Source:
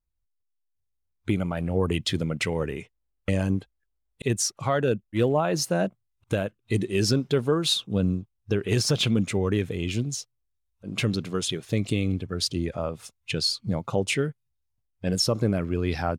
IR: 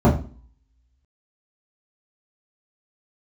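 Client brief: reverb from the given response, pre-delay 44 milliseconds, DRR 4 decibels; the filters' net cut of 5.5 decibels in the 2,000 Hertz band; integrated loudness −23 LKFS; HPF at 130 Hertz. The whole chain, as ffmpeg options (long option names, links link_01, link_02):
-filter_complex "[0:a]highpass=130,equalizer=frequency=2000:width_type=o:gain=-7.5,asplit=2[link_01][link_02];[1:a]atrim=start_sample=2205,adelay=44[link_03];[link_02][link_03]afir=irnorm=-1:irlink=0,volume=-25.5dB[link_04];[link_01][link_04]amix=inputs=2:normalize=0,volume=-3dB"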